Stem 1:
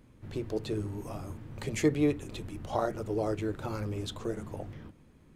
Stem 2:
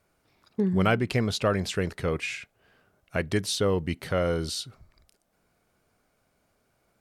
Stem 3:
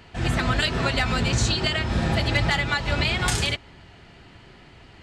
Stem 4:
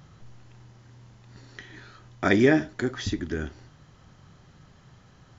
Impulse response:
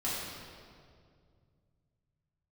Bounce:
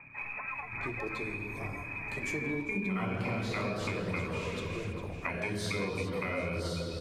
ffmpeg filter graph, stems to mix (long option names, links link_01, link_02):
-filter_complex "[0:a]adelay=500,volume=-7.5dB,asplit=3[link_01][link_02][link_03];[link_02]volume=-9.5dB[link_04];[link_03]volume=-14.5dB[link_05];[1:a]adelay=2100,volume=-0.5dB,asplit=3[link_06][link_07][link_08];[link_07]volume=-8.5dB[link_09];[link_08]volume=-13dB[link_10];[2:a]acompressor=threshold=-23dB:ratio=6,volume=-7.5dB[link_11];[3:a]acompressor=threshold=-25dB:ratio=6,lowpass=frequency=290:width_type=q:width=3.6,asoftclip=type=tanh:threshold=-26dB,volume=-5.5dB,asplit=3[link_12][link_13][link_14];[link_13]volume=-12.5dB[link_15];[link_14]apad=whole_len=221757[link_16];[link_11][link_16]sidechaincompress=threshold=-55dB:ratio=3:attack=9.2:release=1130[link_17];[link_06][link_17][link_12]amix=inputs=3:normalize=0,lowpass=frequency=2200:width_type=q:width=0.5098,lowpass=frequency=2200:width_type=q:width=0.6013,lowpass=frequency=2200:width_type=q:width=0.9,lowpass=frequency=2200:width_type=q:width=2.563,afreqshift=-2600,acompressor=threshold=-29dB:ratio=6,volume=0dB[link_18];[4:a]atrim=start_sample=2205[link_19];[link_04][link_09][link_15]amix=inputs=3:normalize=0[link_20];[link_20][link_19]afir=irnorm=-1:irlink=0[link_21];[link_05][link_10]amix=inputs=2:normalize=0,aecho=0:1:401|802|1203|1604|2005:1|0.32|0.102|0.0328|0.0105[link_22];[link_01][link_18][link_21][link_22]amix=inputs=4:normalize=0,equalizer=frequency=1000:width_type=o:width=0.32:gain=7.5,aphaser=in_gain=1:out_gain=1:delay=4.7:decay=0.23:speed=1.2:type=sinusoidal,acompressor=threshold=-32dB:ratio=4"